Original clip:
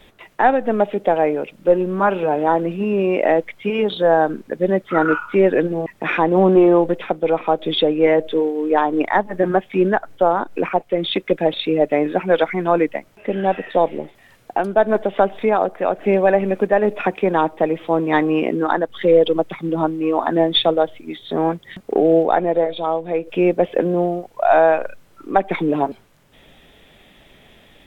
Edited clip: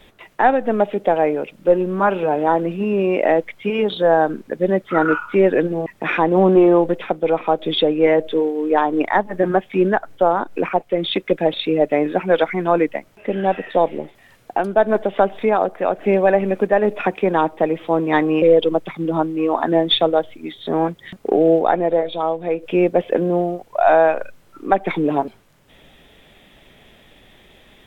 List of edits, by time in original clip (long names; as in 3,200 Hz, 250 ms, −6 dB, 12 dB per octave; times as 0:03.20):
0:18.42–0:19.06: remove